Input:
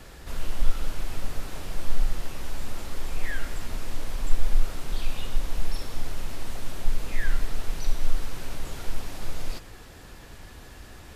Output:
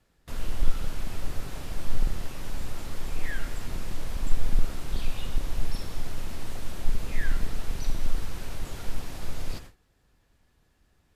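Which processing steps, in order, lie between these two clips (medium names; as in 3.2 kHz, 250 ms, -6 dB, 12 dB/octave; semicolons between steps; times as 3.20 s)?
octave divider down 1 oct, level +1 dB; gate with hold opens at -29 dBFS; trim -2 dB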